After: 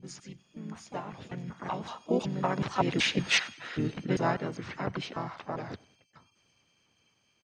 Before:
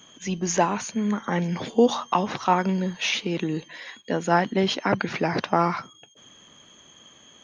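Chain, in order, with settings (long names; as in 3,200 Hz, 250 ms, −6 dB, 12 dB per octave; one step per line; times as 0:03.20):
slices reordered back to front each 193 ms, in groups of 3
source passing by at 0:03.37, 10 m/s, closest 3 metres
parametric band 110 Hz +8.5 dB 0.55 octaves
pitch-shifted copies added −5 semitones −3 dB, −3 semitones −8 dB, +5 semitones −11 dB
on a send: repeating echo 97 ms, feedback 44%, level −23 dB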